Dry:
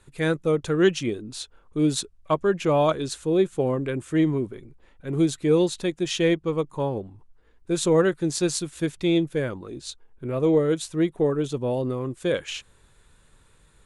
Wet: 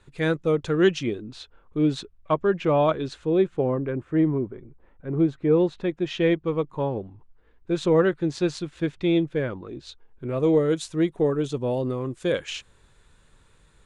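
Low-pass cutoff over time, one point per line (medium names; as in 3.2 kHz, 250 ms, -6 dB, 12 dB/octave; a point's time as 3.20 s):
0.91 s 5.7 kHz
1.39 s 3.2 kHz
3.35 s 3.2 kHz
3.90 s 1.5 kHz
5.33 s 1.5 kHz
6.47 s 3.4 kHz
9.89 s 3.4 kHz
10.40 s 8 kHz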